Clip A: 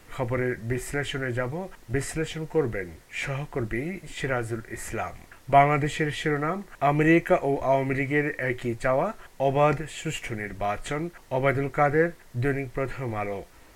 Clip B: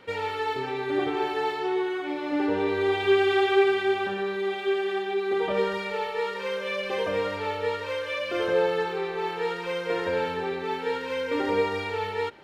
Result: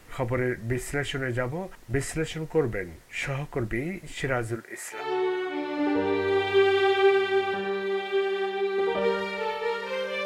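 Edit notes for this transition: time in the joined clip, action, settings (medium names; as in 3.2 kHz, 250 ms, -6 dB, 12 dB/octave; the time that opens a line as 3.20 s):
clip A
4.55–5.09 s: high-pass 210 Hz -> 1.1 kHz
5.00 s: go over to clip B from 1.53 s, crossfade 0.18 s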